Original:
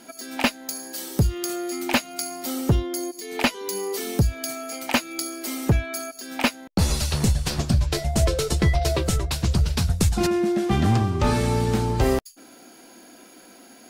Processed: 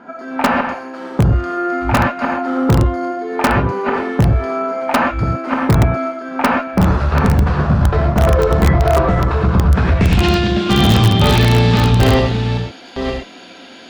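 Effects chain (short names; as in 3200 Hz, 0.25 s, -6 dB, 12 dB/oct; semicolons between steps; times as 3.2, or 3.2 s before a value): reverse delay 0.524 s, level -7 dB; 6.91–8.33 notches 60/120/180/240 Hz; on a send: thin delay 83 ms, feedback 73%, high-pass 1500 Hz, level -20 dB; on the sum: non-linear reverb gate 0.15 s flat, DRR -1 dB; added harmonics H 3 -27 dB, 4 -25 dB, 5 -20 dB, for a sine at -3.5 dBFS; low-pass sweep 1300 Hz -> 3500 Hz, 9.7–10.35; in parallel at -6 dB: wrapped overs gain 7.5 dB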